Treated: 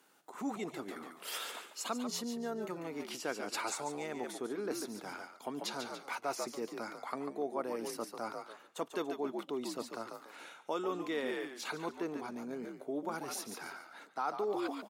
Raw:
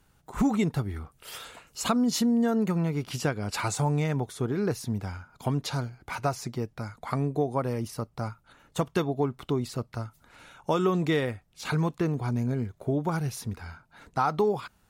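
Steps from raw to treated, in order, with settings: frequency-shifting echo 0.143 s, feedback 31%, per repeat -71 Hz, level -8 dB; reverse; compressor, threshold -33 dBFS, peak gain reduction 13.5 dB; reverse; HPF 270 Hz 24 dB/oct; gain +1 dB

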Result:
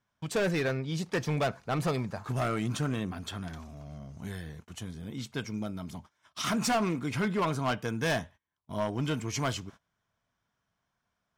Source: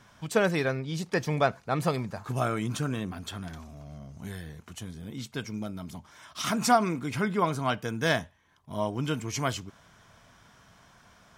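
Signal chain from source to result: gate -47 dBFS, range -24 dB; high shelf 8800 Hz -5 dB; overloaded stage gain 24 dB

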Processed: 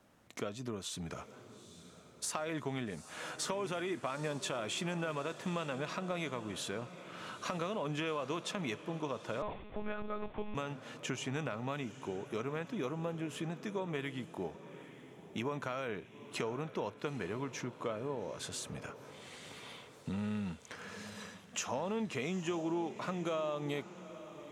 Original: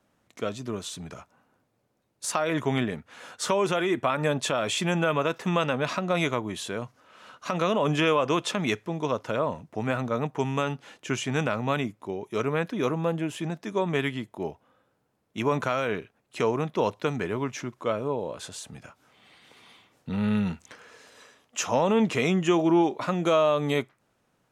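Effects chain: compressor 3:1, threshold -43 dBFS, peak gain reduction 18.5 dB; diffused feedback echo 0.862 s, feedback 52%, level -14 dB; 9.42–10.55 monotone LPC vocoder at 8 kHz 210 Hz; gain +3 dB

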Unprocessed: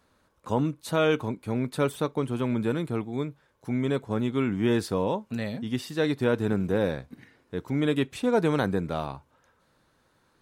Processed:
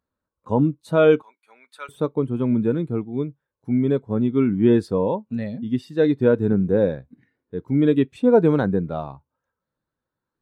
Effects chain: 1.22–1.89 HPF 1300 Hz 12 dB/oct; spectral expander 1.5:1; gain +7 dB

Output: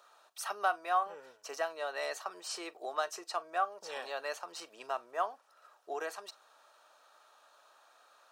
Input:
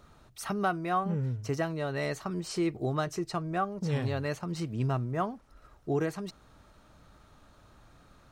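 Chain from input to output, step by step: HPF 580 Hz 24 dB/oct; notch 2100 Hz, Q 6.6; reverb, pre-delay 34 ms, DRR 20 dB

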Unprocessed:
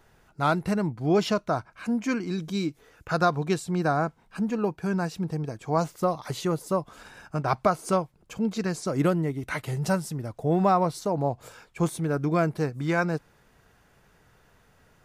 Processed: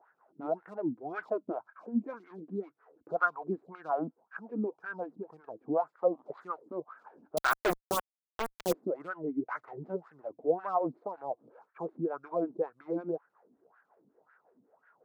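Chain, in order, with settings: median filter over 15 samples; HPF 110 Hz 12 dB/oct; in parallel at -2 dB: compressor 6:1, threshold -36 dBFS, peak gain reduction 18 dB; on the sum: wah 1.9 Hz 250–1600 Hz, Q 6.1; 7.37–8.73 companded quantiser 2-bit; photocell phaser 5.4 Hz; gain +4.5 dB

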